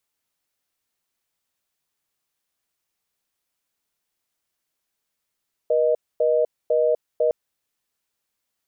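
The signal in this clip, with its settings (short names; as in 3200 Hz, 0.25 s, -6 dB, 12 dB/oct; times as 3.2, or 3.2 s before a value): call progress tone reorder tone, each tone -19 dBFS 1.61 s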